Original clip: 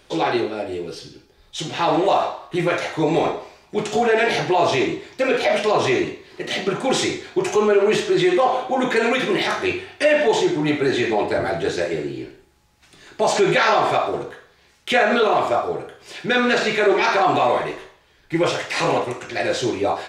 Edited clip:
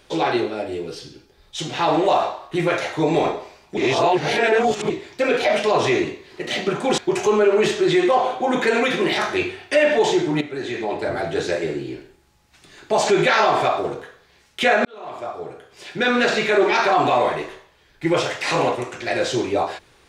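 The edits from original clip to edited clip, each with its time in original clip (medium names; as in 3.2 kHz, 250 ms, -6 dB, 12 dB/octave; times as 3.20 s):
3.77–4.90 s: reverse
6.98–7.27 s: delete
10.70–11.79 s: fade in, from -12.5 dB
15.14–16.47 s: fade in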